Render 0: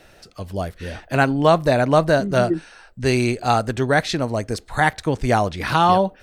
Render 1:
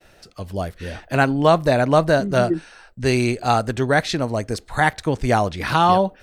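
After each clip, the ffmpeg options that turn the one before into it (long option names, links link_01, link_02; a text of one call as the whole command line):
ffmpeg -i in.wav -af "agate=range=-33dB:threshold=-47dB:ratio=3:detection=peak" out.wav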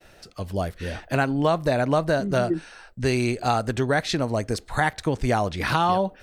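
ffmpeg -i in.wav -af "acompressor=threshold=-20dB:ratio=2.5" out.wav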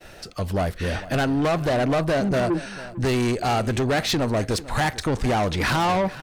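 ffmpeg -i in.wav -af "asoftclip=type=tanh:threshold=-26dB,aecho=1:1:448:0.141,volume=7.5dB" out.wav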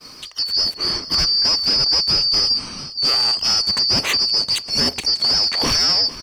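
ffmpeg -i in.wav -af "afftfilt=real='real(if(lt(b,272),68*(eq(floor(b/68),0)*1+eq(floor(b/68),1)*2+eq(floor(b/68),2)*3+eq(floor(b/68),3)*0)+mod(b,68),b),0)':imag='imag(if(lt(b,272),68*(eq(floor(b/68),0)*1+eq(floor(b/68),1)*2+eq(floor(b/68),2)*3+eq(floor(b/68),3)*0)+mod(b,68),b),0)':win_size=2048:overlap=0.75,volume=4dB" out.wav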